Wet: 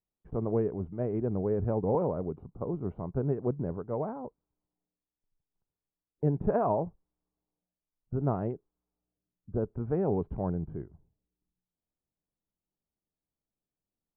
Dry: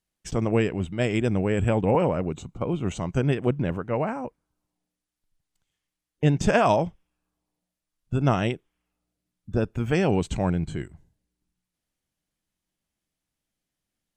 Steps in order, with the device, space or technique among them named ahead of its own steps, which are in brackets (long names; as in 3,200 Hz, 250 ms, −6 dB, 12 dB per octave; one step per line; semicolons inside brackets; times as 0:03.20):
under water (low-pass filter 1,100 Hz 24 dB per octave; parametric band 420 Hz +6 dB 0.23 octaves)
level −7.5 dB